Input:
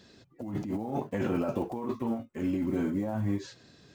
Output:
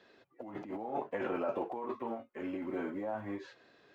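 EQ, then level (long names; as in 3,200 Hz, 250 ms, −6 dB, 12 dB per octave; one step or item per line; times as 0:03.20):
three-way crossover with the lows and the highs turned down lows −20 dB, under 360 Hz, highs −20 dB, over 3,000 Hz
0.0 dB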